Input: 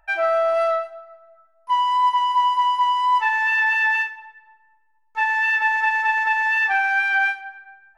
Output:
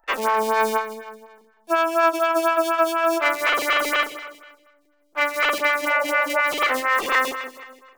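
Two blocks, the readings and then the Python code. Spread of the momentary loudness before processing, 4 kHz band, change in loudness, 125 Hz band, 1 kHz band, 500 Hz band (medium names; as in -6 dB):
6 LU, +3.5 dB, -1.5 dB, no reading, -3.0 dB, +4.0 dB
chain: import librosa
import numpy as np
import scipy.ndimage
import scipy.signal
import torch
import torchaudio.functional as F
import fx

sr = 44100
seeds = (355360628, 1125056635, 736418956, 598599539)

p1 = fx.cycle_switch(x, sr, every=3, mode='inverted')
p2 = fx.peak_eq(p1, sr, hz=97.0, db=-11.0, octaves=2.8)
p3 = fx.spec_repair(p2, sr, seeds[0], start_s=5.88, length_s=0.51, low_hz=360.0, high_hz=1000.0, source='before')
p4 = p3 + fx.echo_feedback(p3, sr, ms=159, feedback_pct=40, wet_db=-12, dry=0)
p5 = fx.stagger_phaser(p4, sr, hz=4.1)
y = F.gain(torch.from_numpy(p5), 2.0).numpy()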